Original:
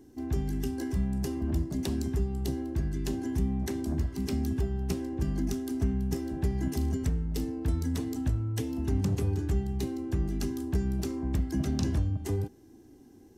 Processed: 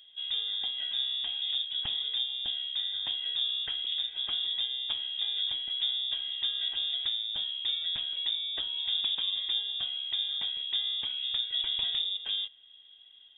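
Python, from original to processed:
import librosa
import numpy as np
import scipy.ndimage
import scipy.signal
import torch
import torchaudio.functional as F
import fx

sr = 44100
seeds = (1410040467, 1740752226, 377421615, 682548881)

y = fx.peak_eq(x, sr, hz=67.0, db=-7.0, octaves=2.2)
y = fx.freq_invert(y, sr, carrier_hz=3600)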